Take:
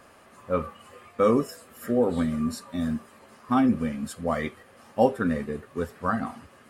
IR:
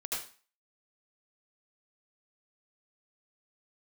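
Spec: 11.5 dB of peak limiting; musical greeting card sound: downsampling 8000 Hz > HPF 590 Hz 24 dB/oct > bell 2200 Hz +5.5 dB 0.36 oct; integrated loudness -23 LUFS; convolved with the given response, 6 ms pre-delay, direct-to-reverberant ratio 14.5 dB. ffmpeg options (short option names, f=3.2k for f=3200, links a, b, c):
-filter_complex "[0:a]alimiter=limit=-18dB:level=0:latency=1,asplit=2[a][b];[1:a]atrim=start_sample=2205,adelay=6[c];[b][c]afir=irnorm=-1:irlink=0,volume=-17.5dB[d];[a][d]amix=inputs=2:normalize=0,aresample=8000,aresample=44100,highpass=f=590:w=0.5412,highpass=f=590:w=1.3066,equalizer=f=2.2k:t=o:w=0.36:g=5.5,volume=14dB"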